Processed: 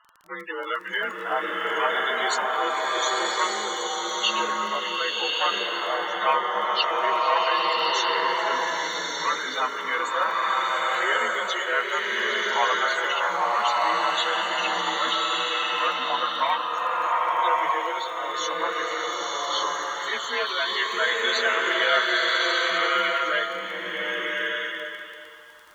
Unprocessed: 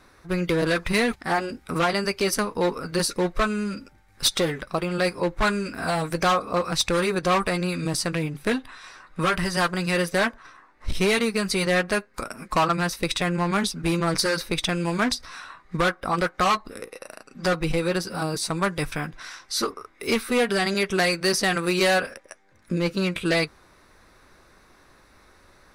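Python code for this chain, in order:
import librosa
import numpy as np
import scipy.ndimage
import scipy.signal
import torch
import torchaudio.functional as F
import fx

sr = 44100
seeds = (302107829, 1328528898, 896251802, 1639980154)

y = fx.partial_stretch(x, sr, pct=90)
y = scipy.signal.sosfilt(scipy.signal.butter(2, 860.0, 'highpass', fs=sr, output='sos'), y)
y = fx.spec_topn(y, sr, count=32)
y = fx.dmg_crackle(y, sr, seeds[0], per_s=13.0, level_db=-37.0)
y = fx.rev_bloom(y, sr, seeds[1], attack_ms=1220, drr_db=-4.5)
y = y * librosa.db_to_amplitude(2.5)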